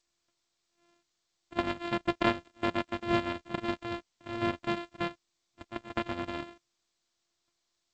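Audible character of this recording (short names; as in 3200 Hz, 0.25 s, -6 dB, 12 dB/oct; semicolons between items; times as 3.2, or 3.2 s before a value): a buzz of ramps at a fixed pitch in blocks of 128 samples; random-step tremolo; G.722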